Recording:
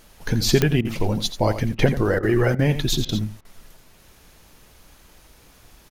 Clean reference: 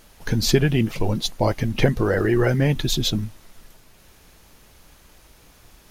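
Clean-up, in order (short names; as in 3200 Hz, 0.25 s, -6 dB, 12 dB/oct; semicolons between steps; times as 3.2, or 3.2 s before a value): de-click; interpolate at 0.81/1.75/2.19/2.55/3.05/3.41, 38 ms; inverse comb 85 ms -11.5 dB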